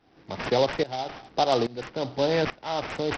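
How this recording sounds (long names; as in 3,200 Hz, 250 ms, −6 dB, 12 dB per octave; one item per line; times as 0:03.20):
a quantiser's noise floor 10 bits, dither none
tremolo saw up 1.2 Hz, depth 90%
aliases and images of a low sample rate 4,300 Hz, jitter 20%
SBC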